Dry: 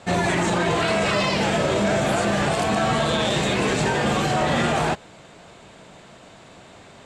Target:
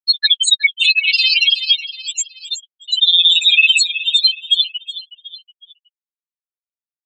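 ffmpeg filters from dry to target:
-filter_complex "[0:a]asplit=2[a][b];[b]asoftclip=type=tanh:threshold=-22.5dB,volume=-3.5dB[c];[a][c]amix=inputs=2:normalize=0,aexciter=amount=13.3:drive=8.3:freq=2.1k,asplit=2[d][e];[e]asetrate=88200,aresample=44100,atempo=0.5,volume=-12dB[f];[d][f]amix=inputs=2:normalize=0,afftfilt=real='re*gte(hypot(re,im),3.16)':imag='im*gte(hypot(re,im),3.16)':win_size=1024:overlap=0.75,tremolo=f=18:d=0.86,afftfilt=real='hypot(re,im)*cos(PI*b)':imag='0':win_size=1024:overlap=0.75,lowshelf=f=86:g=-11.5,flanger=delay=4:depth=3.3:regen=30:speed=0.41:shape=triangular,areverse,acompressor=threshold=-19dB:ratio=16,areverse,aecho=1:1:369|738|1107:0.168|0.0604|0.0218,alimiter=level_in=18dB:limit=-1dB:release=50:level=0:latency=1,adynamicequalizer=threshold=0.0316:dfrequency=2800:dqfactor=0.7:tfrequency=2800:tqfactor=0.7:attack=5:release=100:ratio=0.375:range=2:mode=cutabove:tftype=highshelf"

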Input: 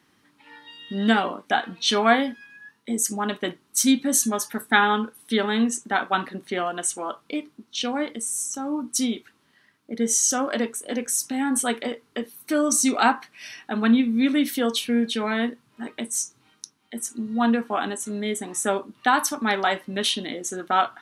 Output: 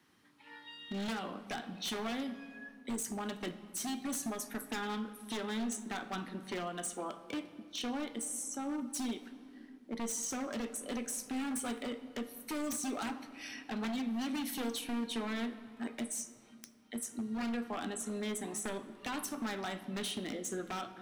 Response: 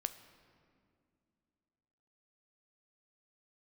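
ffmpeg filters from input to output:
-filter_complex "[0:a]acrossover=split=330|2800|7200[a][b][c][d];[a]acompressor=threshold=-31dB:ratio=4[e];[b]acompressor=threshold=-34dB:ratio=4[f];[c]acompressor=threshold=-41dB:ratio=4[g];[d]acompressor=threshold=-35dB:ratio=4[h];[e][f][g][h]amix=inputs=4:normalize=0,aeval=exprs='0.0501*(abs(mod(val(0)/0.0501+3,4)-2)-1)':c=same[i];[1:a]atrim=start_sample=2205[j];[i][j]afir=irnorm=-1:irlink=0,volume=-5dB"

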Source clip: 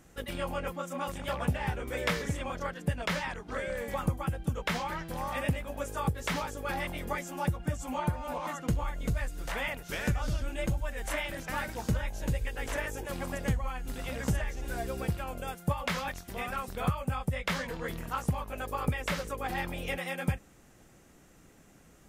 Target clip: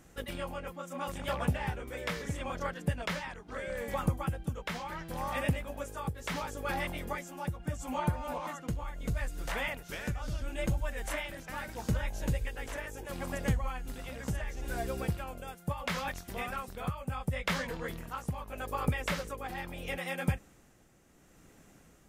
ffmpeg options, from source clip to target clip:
-af "tremolo=f=0.74:d=0.5"

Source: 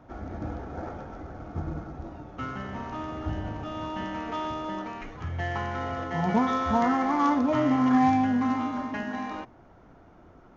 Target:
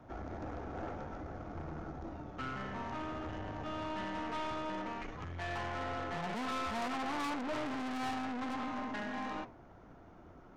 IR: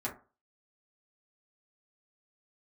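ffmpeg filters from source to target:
-filter_complex "[0:a]flanger=delay=8.1:depth=6.2:regen=-82:speed=1.5:shape=triangular,aeval=exprs='(tanh(79.4*val(0)+0.45)-tanh(0.45))/79.4':c=same,acrossover=split=320|690[a][b][c];[a]alimiter=level_in=18.5dB:limit=-24dB:level=0:latency=1,volume=-18.5dB[d];[d][b][c]amix=inputs=3:normalize=0,volume=3.5dB"

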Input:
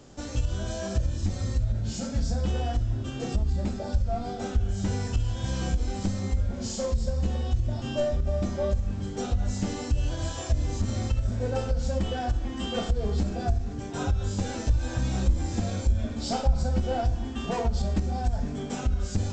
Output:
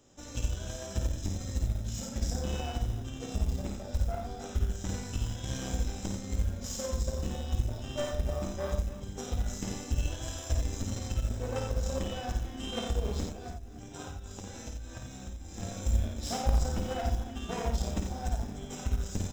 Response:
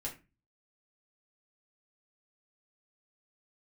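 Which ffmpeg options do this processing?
-filter_complex "[0:a]highshelf=f=4.6k:g=9,bandreject=f=50:t=h:w=6,bandreject=f=100:t=h:w=6,bandreject=f=150:t=h:w=6,bandreject=f=200:t=h:w=6,asettb=1/sr,asplit=3[a][b][c];[a]atrim=end=13.244[d];[b]atrim=start=13.24:end=15.6,asetpts=PTS-STARTPTS,afade=t=in:d=0.004:c=qsin,afade=t=out:st=2.356:d=0.004:c=qsin,acompressor=threshold=-29dB:ratio=12[e];[c]atrim=start=15.596[f];[d][e]acrossfade=d=0.004:c1=hsin:c2=qsin[g];[g][f]acrossfade=d=0.004:c1=qsin:c2=hsin,aeval=exprs='0.266*(cos(1*acos(clip(val(0)/0.266,-1,1)))-cos(1*PI/2))+0.0841*(cos(3*acos(clip(val(0)/0.266,-1,1)))-cos(3*PI/2))+0.0422*(cos(5*acos(clip(val(0)/0.266,-1,1)))-cos(5*PI/2))+0.00237*(cos(6*acos(clip(val(0)/0.266,-1,1)))-cos(6*PI/2))+0.0237*(cos(7*acos(clip(val(0)/0.266,-1,1)))-cos(7*PI/2))':c=same,acrusher=bits=7:mode=log:mix=0:aa=0.000001,asuperstop=centerf=4500:order=4:qfactor=7.2,aecho=1:1:53|88|299:0.562|0.501|0.224"

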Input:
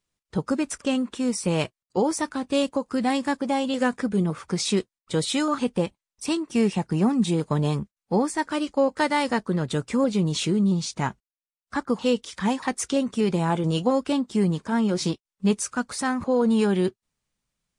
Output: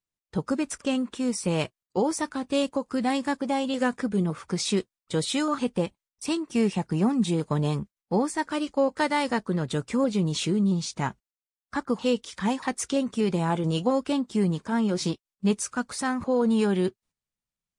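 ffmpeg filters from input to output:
-af "agate=range=-10dB:threshold=-53dB:ratio=16:detection=peak,volume=-2dB"

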